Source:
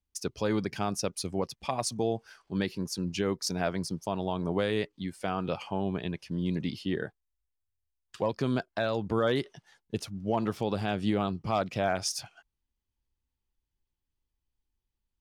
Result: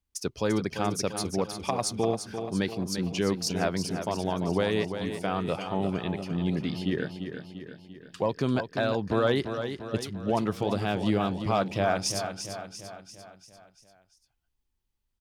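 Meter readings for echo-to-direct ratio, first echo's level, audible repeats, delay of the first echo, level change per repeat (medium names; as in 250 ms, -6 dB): -7.0 dB, -8.5 dB, 5, 344 ms, -5.5 dB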